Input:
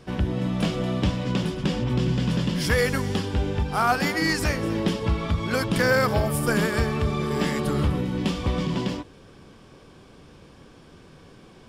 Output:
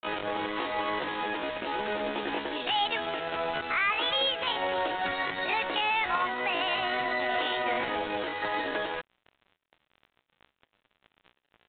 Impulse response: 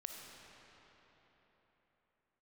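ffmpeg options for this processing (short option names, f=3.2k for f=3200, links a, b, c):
-filter_complex "[0:a]highpass=350,lowshelf=f=450:g=-4.5,asplit=2[a][b];[b]acompressor=threshold=-37dB:ratio=20,volume=2.5dB[c];[a][c]amix=inputs=2:normalize=0,alimiter=limit=-17.5dB:level=0:latency=1:release=67,areverse,acompressor=mode=upward:threshold=-35dB:ratio=2.5,areverse,acrusher=bits=4:mix=0:aa=0.5,asetrate=74167,aresample=44100,atempo=0.594604,aresample=8000,aresample=44100"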